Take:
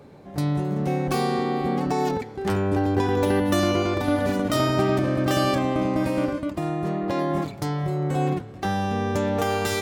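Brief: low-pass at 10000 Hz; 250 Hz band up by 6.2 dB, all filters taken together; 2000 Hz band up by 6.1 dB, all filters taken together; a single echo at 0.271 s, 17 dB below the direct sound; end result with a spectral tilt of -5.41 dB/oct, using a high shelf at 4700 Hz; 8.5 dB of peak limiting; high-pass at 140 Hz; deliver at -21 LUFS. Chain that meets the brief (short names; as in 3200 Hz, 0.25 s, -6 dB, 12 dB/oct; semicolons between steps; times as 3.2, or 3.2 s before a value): HPF 140 Hz; LPF 10000 Hz; bell 250 Hz +8.5 dB; bell 2000 Hz +7 dB; high shelf 4700 Hz +3.5 dB; limiter -13 dBFS; echo 0.271 s -17 dB; gain +1.5 dB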